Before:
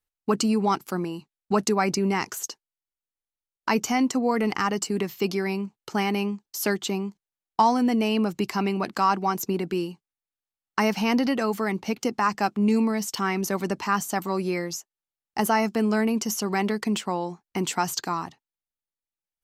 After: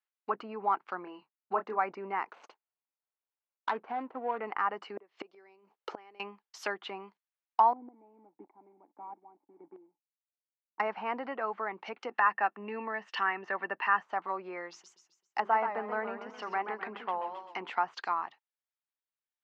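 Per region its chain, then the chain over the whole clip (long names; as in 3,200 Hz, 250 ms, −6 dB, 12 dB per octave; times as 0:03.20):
0:01.04–0:01.79: high-shelf EQ 3,400 Hz −8 dB + double-tracking delay 27 ms −7.5 dB + one half of a high-frequency compander decoder only
0:02.30–0:04.40: running median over 25 samples + notch filter 1,200 Hz, Q 25
0:04.97–0:06.20: parametric band 440 Hz +14 dB 1.8 octaves + gate with flip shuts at −13 dBFS, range −30 dB
0:07.73–0:10.80: one scale factor per block 3 bits + formant resonators in series u + square-wave tremolo 1.6 Hz, depth 65%, duty 25%
0:12.11–0:14.03: hollow resonant body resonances 1,800/2,700 Hz, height 14 dB, ringing for 20 ms + one half of a high-frequency compander encoder only
0:14.70–0:17.70: mains-hum notches 50/100/150/200/250/300/350/400 Hz + feedback echo with a swinging delay time 130 ms, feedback 42%, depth 157 cents, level −8 dB
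whole clip: low-pass filter 2,700 Hz 12 dB per octave; treble cut that deepens with the level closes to 1,300 Hz, closed at −22.5 dBFS; high-pass filter 850 Hz 12 dB per octave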